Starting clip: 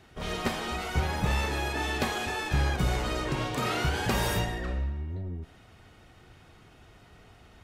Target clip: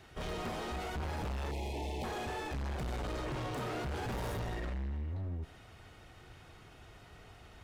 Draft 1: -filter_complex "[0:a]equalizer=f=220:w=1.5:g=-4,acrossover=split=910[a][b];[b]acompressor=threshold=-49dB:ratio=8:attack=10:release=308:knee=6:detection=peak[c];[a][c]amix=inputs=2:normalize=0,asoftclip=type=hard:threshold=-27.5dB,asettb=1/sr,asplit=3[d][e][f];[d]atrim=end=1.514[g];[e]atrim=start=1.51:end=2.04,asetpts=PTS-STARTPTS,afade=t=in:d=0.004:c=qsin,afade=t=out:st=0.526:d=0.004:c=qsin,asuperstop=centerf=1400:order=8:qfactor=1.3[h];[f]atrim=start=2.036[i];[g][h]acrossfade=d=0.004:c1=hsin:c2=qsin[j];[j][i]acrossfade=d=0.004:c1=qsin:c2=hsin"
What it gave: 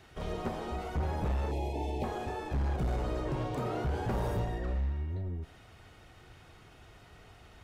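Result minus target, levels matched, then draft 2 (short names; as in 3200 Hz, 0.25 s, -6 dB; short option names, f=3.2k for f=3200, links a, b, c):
compressor: peak gain reduction +6 dB; hard clip: distortion -6 dB
-filter_complex "[0:a]equalizer=f=220:w=1.5:g=-4,acrossover=split=910[a][b];[b]acompressor=threshold=-42dB:ratio=8:attack=10:release=308:knee=6:detection=peak[c];[a][c]amix=inputs=2:normalize=0,asoftclip=type=hard:threshold=-35.5dB,asettb=1/sr,asplit=3[d][e][f];[d]atrim=end=1.514[g];[e]atrim=start=1.51:end=2.04,asetpts=PTS-STARTPTS,afade=t=in:d=0.004:c=qsin,afade=t=out:st=0.526:d=0.004:c=qsin,asuperstop=centerf=1400:order=8:qfactor=1.3[h];[f]atrim=start=2.036[i];[g][h]acrossfade=d=0.004:c1=hsin:c2=qsin[j];[j][i]acrossfade=d=0.004:c1=qsin:c2=hsin"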